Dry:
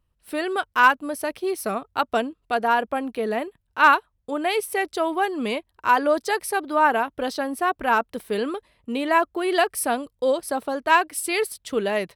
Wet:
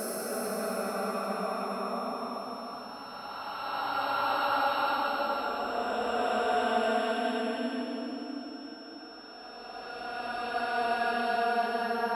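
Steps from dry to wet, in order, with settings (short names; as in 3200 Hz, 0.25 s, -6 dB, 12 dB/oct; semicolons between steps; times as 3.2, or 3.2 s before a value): spectral swells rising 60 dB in 0.31 s; two-slope reverb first 0.72 s, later 2.1 s, DRR 13 dB; Paulstretch 12×, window 0.25 s, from 1.61; whine 5400 Hz -42 dBFS; gain -7.5 dB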